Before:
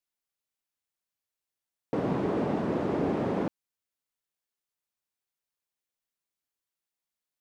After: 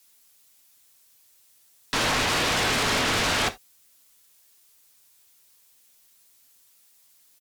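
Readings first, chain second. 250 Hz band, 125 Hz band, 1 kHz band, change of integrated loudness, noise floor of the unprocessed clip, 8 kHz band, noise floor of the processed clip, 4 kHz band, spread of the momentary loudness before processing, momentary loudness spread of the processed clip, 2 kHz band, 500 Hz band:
−4.0 dB, +0.5 dB, +8.5 dB, +7.0 dB, below −85 dBFS, can't be measured, −60 dBFS, +28.0 dB, 5 LU, 4 LU, +19.5 dB, −1.0 dB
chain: high-shelf EQ 3,300 Hz +12 dB
comb filter 7.4 ms, depth 35%
leveller curve on the samples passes 1
brickwall limiter −22.5 dBFS, peak gain reduction 6.5 dB
sine wavefolder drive 16 dB, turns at −22.5 dBFS
reverb whose tail is shaped and stops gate 100 ms falling, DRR 10.5 dB
level +1.5 dB

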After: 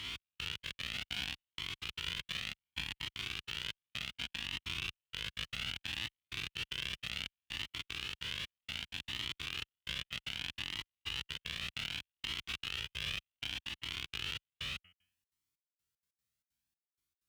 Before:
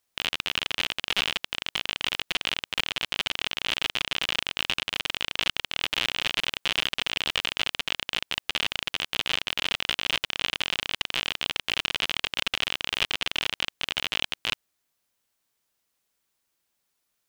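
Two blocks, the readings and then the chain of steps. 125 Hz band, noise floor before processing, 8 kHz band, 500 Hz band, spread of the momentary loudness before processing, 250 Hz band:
−3.0 dB, −78 dBFS, −12.5 dB, −18.5 dB, 3 LU, −10.5 dB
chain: every bin's largest magnitude spread in time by 480 ms
hum removal 89.9 Hz, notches 36
gate pattern "xx...xx.x.xxx.x" 190 BPM −60 dB
high-shelf EQ 2,100 Hz −9.5 dB
brickwall limiter −8.5 dBFS, peak gain reduction 4 dB
high-pass filter 63 Hz 12 dB per octave
guitar amp tone stack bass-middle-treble 6-0-2
flanger whose copies keep moving one way rising 0.65 Hz
level +10.5 dB

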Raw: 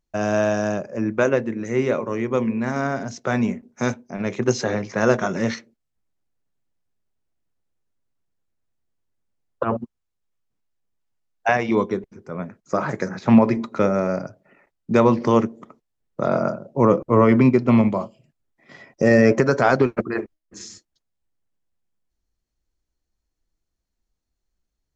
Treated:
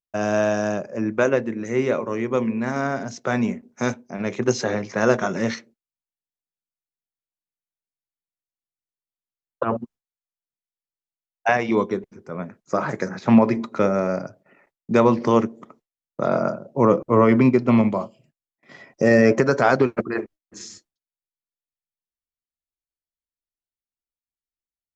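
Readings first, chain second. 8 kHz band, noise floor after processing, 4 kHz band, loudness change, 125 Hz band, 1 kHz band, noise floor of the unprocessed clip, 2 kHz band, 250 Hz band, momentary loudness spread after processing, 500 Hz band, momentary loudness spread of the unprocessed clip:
can't be measured, below −85 dBFS, 0.0 dB, −0.5 dB, −2.5 dB, 0.0 dB, −79 dBFS, 0.0 dB, −1.0 dB, 14 LU, 0.0 dB, 14 LU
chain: noise gate with hold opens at −48 dBFS
low-shelf EQ 80 Hz −8 dB

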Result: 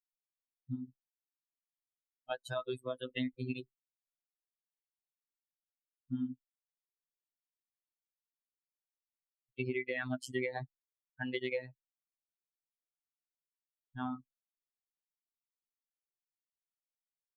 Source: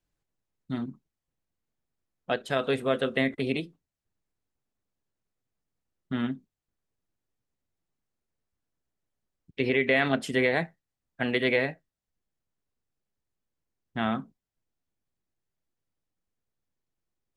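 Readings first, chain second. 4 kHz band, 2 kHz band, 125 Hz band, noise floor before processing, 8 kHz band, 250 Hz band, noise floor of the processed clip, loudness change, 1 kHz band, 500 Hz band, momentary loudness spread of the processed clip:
−12.0 dB, −13.0 dB, −8.0 dB, below −85 dBFS, −7.0 dB, −10.0 dB, below −85 dBFS, −11.5 dB, −12.0 dB, −12.0 dB, 14 LU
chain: spectral dynamics exaggerated over time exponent 3
downward compressor 6 to 1, threshold −35 dBFS, peak gain reduction 11 dB
phases set to zero 127 Hz
level +3.5 dB

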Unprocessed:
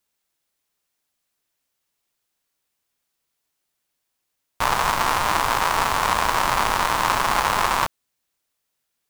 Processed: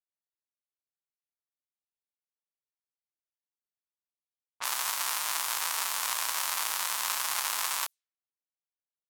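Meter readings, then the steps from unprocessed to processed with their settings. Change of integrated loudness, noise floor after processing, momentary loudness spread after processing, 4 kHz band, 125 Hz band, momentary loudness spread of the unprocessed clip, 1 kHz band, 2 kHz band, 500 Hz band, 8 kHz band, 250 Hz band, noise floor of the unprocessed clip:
−8.5 dB, below −85 dBFS, 3 LU, −5.5 dB, below −35 dB, 3 LU, −16.5 dB, −11.5 dB, −21.5 dB, 0.0 dB, below −25 dB, −78 dBFS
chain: first difference
low-pass that shuts in the quiet parts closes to 580 Hz, open at −29.5 dBFS

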